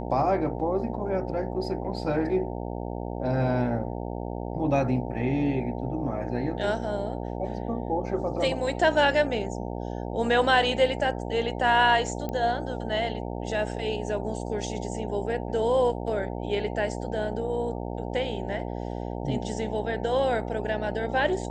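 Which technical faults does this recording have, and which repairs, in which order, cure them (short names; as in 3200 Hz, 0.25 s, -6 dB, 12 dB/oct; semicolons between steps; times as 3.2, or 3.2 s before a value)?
buzz 60 Hz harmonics 15 -33 dBFS
12.29 pop -19 dBFS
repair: de-click; de-hum 60 Hz, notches 15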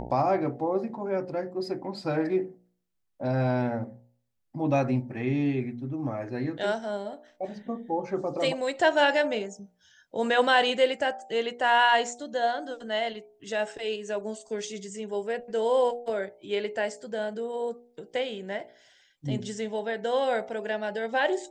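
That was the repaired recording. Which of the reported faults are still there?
none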